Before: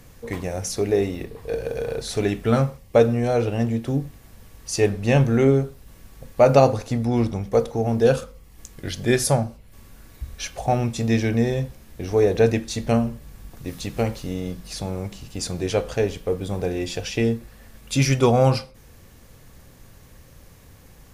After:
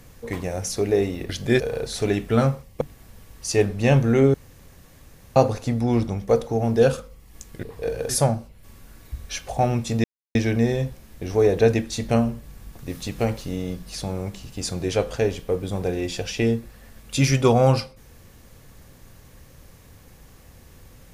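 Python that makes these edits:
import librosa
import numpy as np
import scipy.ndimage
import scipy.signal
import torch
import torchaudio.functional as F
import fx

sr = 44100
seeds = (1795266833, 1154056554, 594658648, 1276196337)

y = fx.edit(x, sr, fx.swap(start_s=1.29, length_s=0.46, other_s=8.87, other_length_s=0.31),
    fx.cut(start_s=2.96, length_s=1.09),
    fx.room_tone_fill(start_s=5.58, length_s=1.02),
    fx.insert_silence(at_s=11.13, length_s=0.31), tone=tone)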